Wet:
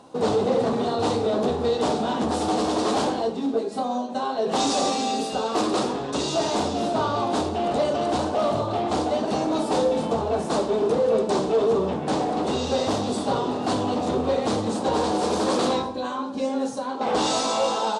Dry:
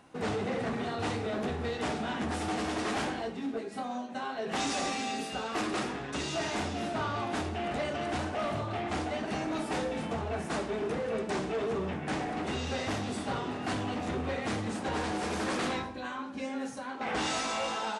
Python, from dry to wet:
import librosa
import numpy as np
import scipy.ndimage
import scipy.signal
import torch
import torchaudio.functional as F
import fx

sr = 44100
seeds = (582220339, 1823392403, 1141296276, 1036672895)

y = fx.graphic_eq(x, sr, hz=(125, 250, 500, 1000, 2000, 4000, 8000), db=(4, 6, 11, 9, -8, 10, 7))